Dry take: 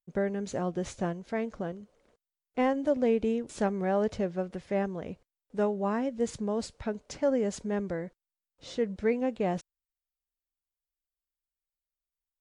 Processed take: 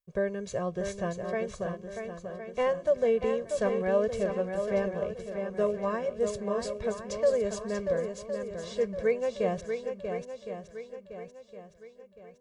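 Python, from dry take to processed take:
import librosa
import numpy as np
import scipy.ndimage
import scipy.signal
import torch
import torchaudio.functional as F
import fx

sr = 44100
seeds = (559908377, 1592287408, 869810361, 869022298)

p1 = x + 0.99 * np.pad(x, (int(1.8 * sr / 1000.0), 0))[:len(x)]
p2 = p1 + fx.echo_swing(p1, sr, ms=1063, ratio=1.5, feedback_pct=38, wet_db=-6.5, dry=0)
y = p2 * 10.0 ** (-3.0 / 20.0)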